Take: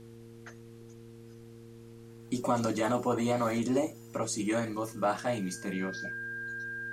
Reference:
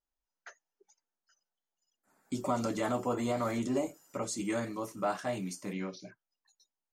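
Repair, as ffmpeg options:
ffmpeg -i in.wav -af "bandreject=frequency=115.3:width_type=h:width=4,bandreject=frequency=230.6:width_type=h:width=4,bandreject=frequency=345.9:width_type=h:width=4,bandreject=frequency=461.2:width_type=h:width=4,bandreject=frequency=1600:width=30,agate=range=-21dB:threshold=-42dB,asetnsamples=nb_out_samples=441:pad=0,asendcmd='2.21 volume volume -3dB',volume=0dB" out.wav

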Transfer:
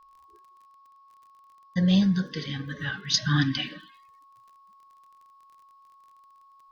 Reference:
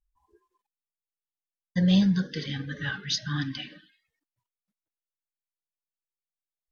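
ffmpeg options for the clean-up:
ffmpeg -i in.wav -af "adeclick=threshold=4,bandreject=frequency=1100:width=30,agate=range=-21dB:threshold=-48dB,asetnsamples=nb_out_samples=441:pad=0,asendcmd='3.14 volume volume -7dB',volume=0dB" out.wav

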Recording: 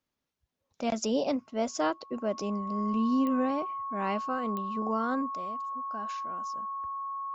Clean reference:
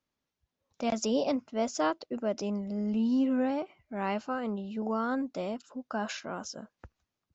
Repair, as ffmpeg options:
ffmpeg -i in.wav -af "adeclick=threshold=4,bandreject=frequency=1100:width=30,asetnsamples=nb_out_samples=441:pad=0,asendcmd='5.35 volume volume 9.5dB',volume=0dB" out.wav

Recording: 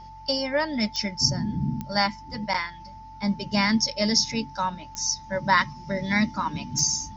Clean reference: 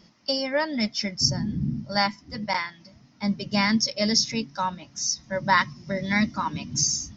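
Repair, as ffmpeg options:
ffmpeg -i in.wav -af "adeclick=threshold=4,bandreject=frequency=46.1:width_type=h:width=4,bandreject=frequency=92.2:width_type=h:width=4,bandreject=frequency=138.3:width_type=h:width=4,bandreject=frequency=880:width=30" out.wav

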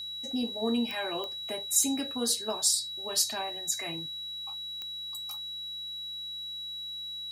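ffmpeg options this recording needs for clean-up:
ffmpeg -i in.wav -af "adeclick=threshold=4,bandreject=frequency=106.7:width_type=h:width=4,bandreject=frequency=213.4:width_type=h:width=4,bandreject=frequency=320.1:width_type=h:width=4,bandreject=frequency=3900:width=30,agate=range=-21dB:threshold=-31dB" out.wav

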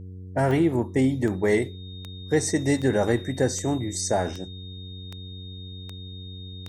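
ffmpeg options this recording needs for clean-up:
ffmpeg -i in.wav -af "adeclick=threshold=4,bandreject=frequency=92.6:width_type=h:width=4,bandreject=frequency=185.2:width_type=h:width=4,bandreject=frequency=277.8:width_type=h:width=4,bandreject=frequency=370.4:width_type=h:width=4,bandreject=frequency=463:width_type=h:width=4,bandreject=frequency=3700:width=30" out.wav

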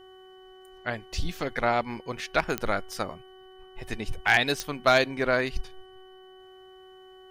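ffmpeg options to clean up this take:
ffmpeg -i in.wav -af "adeclick=threshold=4,bandreject=frequency=375.1:width_type=h:width=4,bandreject=frequency=750.2:width_type=h:width=4,bandreject=frequency=1125.3:width_type=h:width=4,bandreject=frequency=1500.4:width_type=h:width=4,bandreject=frequency=1875.5:width_type=h:width=4,bandreject=frequency=3000:width=30" out.wav

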